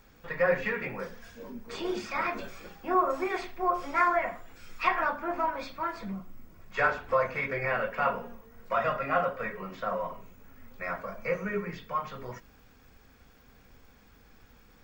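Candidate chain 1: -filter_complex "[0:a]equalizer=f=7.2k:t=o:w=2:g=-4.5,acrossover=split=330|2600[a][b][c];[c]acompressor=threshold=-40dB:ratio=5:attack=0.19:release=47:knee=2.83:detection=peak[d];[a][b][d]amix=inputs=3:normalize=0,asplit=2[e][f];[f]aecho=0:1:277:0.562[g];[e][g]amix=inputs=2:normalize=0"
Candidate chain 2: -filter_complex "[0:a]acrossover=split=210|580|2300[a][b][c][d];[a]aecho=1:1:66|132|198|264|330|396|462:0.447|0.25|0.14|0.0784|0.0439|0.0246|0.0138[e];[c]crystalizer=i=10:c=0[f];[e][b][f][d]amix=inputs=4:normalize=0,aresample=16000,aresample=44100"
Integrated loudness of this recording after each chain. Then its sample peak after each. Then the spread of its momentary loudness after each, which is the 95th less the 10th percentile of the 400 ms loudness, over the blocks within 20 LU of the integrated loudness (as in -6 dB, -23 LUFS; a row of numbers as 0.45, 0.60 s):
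-30.5, -26.0 LUFS; -11.5, -6.0 dBFS; 13, 18 LU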